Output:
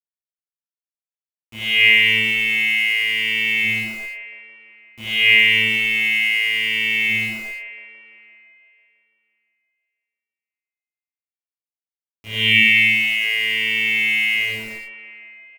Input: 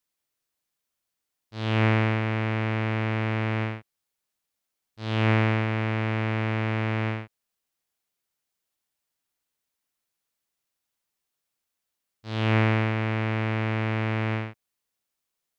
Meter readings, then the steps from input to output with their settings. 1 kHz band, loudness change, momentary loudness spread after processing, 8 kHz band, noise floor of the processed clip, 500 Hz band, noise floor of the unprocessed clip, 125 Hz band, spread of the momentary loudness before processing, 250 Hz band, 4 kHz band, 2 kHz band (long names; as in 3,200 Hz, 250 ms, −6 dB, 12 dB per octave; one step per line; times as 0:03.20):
below −10 dB, +11.0 dB, 17 LU, can't be measured, below −85 dBFS, −7.5 dB, −84 dBFS, −13.0 dB, 11 LU, −6.0 dB, +20.5 dB, +17.0 dB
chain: hum removal 110.1 Hz, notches 31
dynamic equaliser 190 Hz, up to −4 dB, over −47 dBFS, Q 1.5
time-frequency box erased 0:12.45–0:13.16, 370–1,700 Hz
drawn EQ curve 180 Hz 0 dB, 260 Hz +11 dB, 380 Hz −4 dB, 750 Hz −15 dB, 1,400 Hz −21 dB, 2,100 Hz +13 dB, 3,000 Hz +15 dB, 4,500 Hz −20 dB, 6,700 Hz −21 dB, 10,000 Hz −24 dB
bit reduction 8 bits
double-tracking delay 23 ms −6 dB
delay with a band-pass on its return 168 ms, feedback 68%, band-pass 1,000 Hz, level −10 dB
reverb whose tail is shaped and stops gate 100 ms rising, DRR −4.5 dB
barber-pole flanger 6.5 ms +0.87 Hz
level +7.5 dB